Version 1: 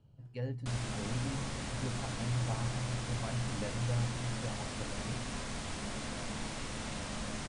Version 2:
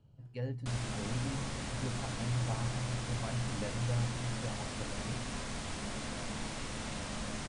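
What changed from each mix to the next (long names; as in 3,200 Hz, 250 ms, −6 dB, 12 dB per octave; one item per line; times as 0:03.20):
nothing changed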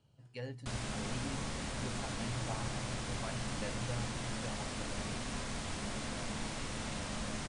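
speech: add spectral tilt +2.5 dB per octave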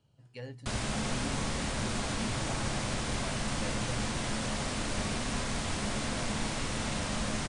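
background +6.5 dB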